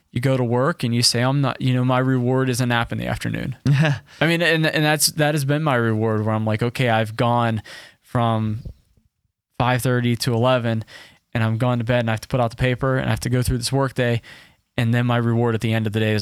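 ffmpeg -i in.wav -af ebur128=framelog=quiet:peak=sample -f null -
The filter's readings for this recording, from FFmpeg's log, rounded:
Integrated loudness:
  I:         -20.3 LUFS
  Threshold: -30.6 LUFS
Loudness range:
  LRA:         3.8 LU
  Threshold: -40.8 LUFS
  LRA low:   -22.8 LUFS
  LRA high:  -19.1 LUFS
Sample peak:
  Peak:       -3.0 dBFS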